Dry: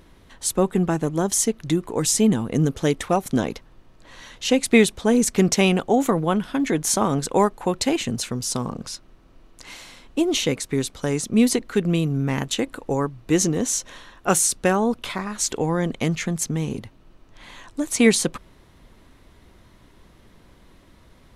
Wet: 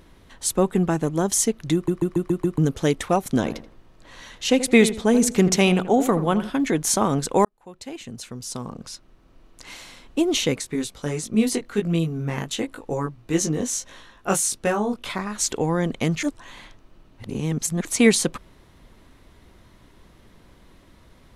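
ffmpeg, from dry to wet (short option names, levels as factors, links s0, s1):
-filter_complex "[0:a]asettb=1/sr,asplit=3[s0][s1][s2];[s0]atrim=end=3.374[s3];[s1]atrim=start=3.37:end=6.5,asetpts=PTS-STARTPTS,afade=t=in:d=0.004:c=qsin,afade=t=out:st=3.126:d=0.004:c=qsin,asplit=2[s4][s5];[s5]adelay=81,lowpass=f=1700:p=1,volume=0.266,asplit=2[s6][s7];[s7]adelay=81,lowpass=f=1700:p=1,volume=0.33,asplit=2[s8][s9];[s9]adelay=81,lowpass=f=1700:p=1,volume=0.33[s10];[s4][s6][s8][s10]amix=inputs=4:normalize=0,atrim=end_sample=138033[s11];[s2]atrim=start=6.496[s12];[s3][s11]acrossfade=d=0.004:c1=hsin:c2=qsin[s13];[s13][s12]acrossfade=d=0.004:c1=qsin:c2=hsin,asplit=3[s14][s15][s16];[s14]afade=t=out:st=10.61:d=0.02[s17];[s15]flanger=delay=18:depth=2.5:speed=1.5,afade=t=in:st=10.61:d=0.02,afade=t=out:st=15.05:d=0.02[s18];[s16]afade=t=in:st=15.05:d=0.02[s19];[s17][s18][s19]amix=inputs=3:normalize=0,asplit=10[s20][s21][s22][s23][s24][s25][s26][s27][s28][s29];[s20]atrim=end=1.882[s30];[s21]atrim=start=1.738:end=1.882[s31];[s22]atrim=start=1.738:end=1.882[s32];[s23]atrim=start=1.738:end=1.882[s33];[s24]atrim=start=1.738:end=1.882[s34];[s25]atrim=start=1.738:end=1.882[s35];[s26]atrim=start=2.578:end=7.45,asetpts=PTS-STARTPTS,afade=t=out:st=4.868:d=0.004:c=hsin[s36];[s27]atrim=start=7.45:end=16.232,asetpts=PTS-STARTPTS,afade=t=in:d=2.32[s37];[s28]atrim=start=16.228:end=17.852,asetpts=PTS-STARTPTS,areverse[s38];[s29]atrim=start=17.848[s39];[s30][s31]acrossfade=d=0.004:c1=hsin:c2=hsin[s40];[s40][s32]acrossfade=d=0.004:c1=hsin:c2=hsin[s41];[s41][s33]acrossfade=d=0.004:c1=hsin:c2=hsin[s42];[s42][s34]acrossfade=d=0.004:c1=hsin:c2=hsin[s43];[s43][s35]acrossfade=d=0.004:c1=hsin:c2=hsin[s44];[s36][s37]concat=n=2:v=0:a=1[s45];[s44][s45]acrossfade=d=0.004:c1=hsin:c2=hsin[s46];[s46][s38]acrossfade=d=0.004:c1=hsin:c2=hsin[s47];[s47][s39]acrossfade=d=0.004:c1=hsin:c2=hsin"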